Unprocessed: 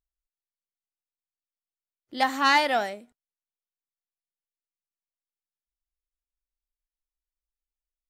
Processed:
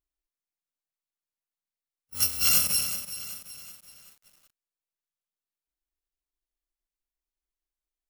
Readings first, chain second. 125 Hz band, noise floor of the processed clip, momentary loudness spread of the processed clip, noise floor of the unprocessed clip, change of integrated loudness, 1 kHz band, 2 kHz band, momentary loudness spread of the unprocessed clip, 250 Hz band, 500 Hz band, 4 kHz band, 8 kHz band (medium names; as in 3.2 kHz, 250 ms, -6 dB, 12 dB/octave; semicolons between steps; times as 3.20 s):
no reading, under -85 dBFS, 21 LU, under -85 dBFS, 0.0 dB, -22.0 dB, -11.0 dB, 15 LU, -13.5 dB, -20.0 dB, +1.5 dB, +18.0 dB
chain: bit-reversed sample order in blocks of 128 samples; bit-crushed delay 378 ms, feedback 55%, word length 7-bit, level -11.5 dB; trim -1.5 dB